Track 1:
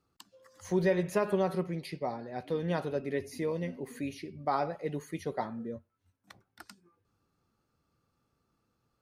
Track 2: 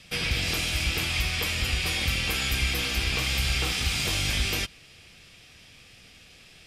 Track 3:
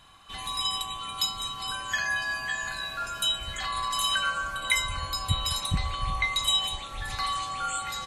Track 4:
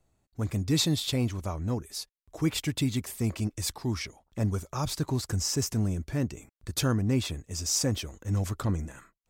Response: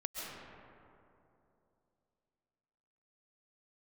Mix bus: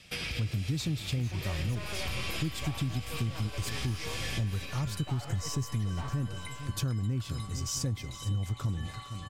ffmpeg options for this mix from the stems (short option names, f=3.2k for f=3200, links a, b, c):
-filter_complex "[0:a]highpass=840,aeval=exprs='(tanh(158*val(0)+0.55)-tanh(0.55))/158':c=same,adelay=600,volume=2dB,asplit=2[a][b];[b]volume=-7dB[c];[1:a]acompressor=threshold=-29dB:ratio=6,volume=-6.5dB,asplit=2[d][e];[e]volume=-5dB[f];[2:a]aecho=1:1:6.9:0.92,acompressor=threshold=-31dB:ratio=6,adelay=1750,volume=-13dB,asplit=2[g][h];[h]volume=-4.5dB[i];[3:a]equalizer=f=120:t=o:w=1.3:g=12.5,volume=-6.5dB,asplit=3[j][k][l];[k]volume=-16dB[m];[l]apad=whole_len=294120[n];[d][n]sidechaincompress=threshold=-36dB:ratio=8:attack=16:release=309[o];[4:a]atrim=start_sample=2205[p];[c][f]amix=inputs=2:normalize=0[q];[q][p]afir=irnorm=-1:irlink=0[r];[i][m]amix=inputs=2:normalize=0,aecho=0:1:459|918|1377|1836|2295|2754:1|0.46|0.212|0.0973|0.0448|0.0206[s];[a][o][g][j][r][s]amix=inputs=6:normalize=0,acompressor=threshold=-28dB:ratio=6"